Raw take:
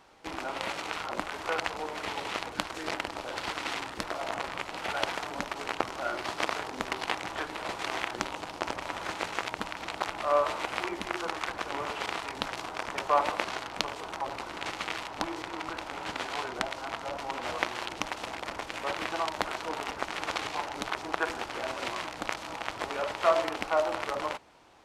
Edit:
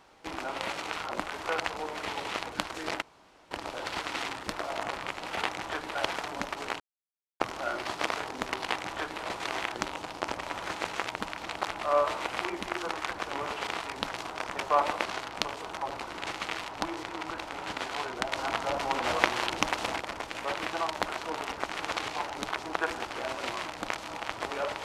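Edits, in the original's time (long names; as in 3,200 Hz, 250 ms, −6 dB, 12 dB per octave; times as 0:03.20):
0:03.02: splice in room tone 0.49 s
0:05.79: splice in silence 0.60 s
0:07.09–0:07.61: duplicate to 0:04.94
0:16.71–0:18.39: clip gain +5.5 dB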